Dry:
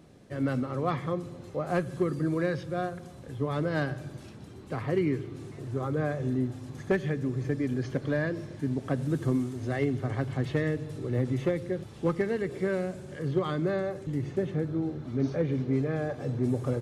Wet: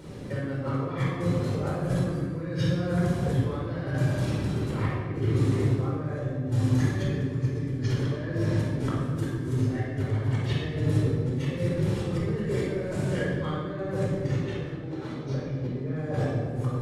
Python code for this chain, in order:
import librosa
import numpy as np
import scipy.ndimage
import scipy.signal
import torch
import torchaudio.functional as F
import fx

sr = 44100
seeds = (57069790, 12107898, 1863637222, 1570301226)

y = fx.over_compress(x, sr, threshold_db=-39.0, ratio=-1.0)
y = fx.weighting(y, sr, curve='A', at=(14.39, 15.25))
y = fx.room_shoebox(y, sr, seeds[0], volume_m3=2000.0, walls='mixed', distance_m=4.6)